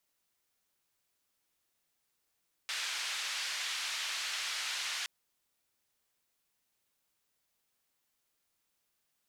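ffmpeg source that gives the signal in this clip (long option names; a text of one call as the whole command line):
ffmpeg -f lavfi -i "anoisesrc=color=white:duration=2.37:sample_rate=44100:seed=1,highpass=frequency=1500,lowpass=frequency=4600,volume=-24dB" out.wav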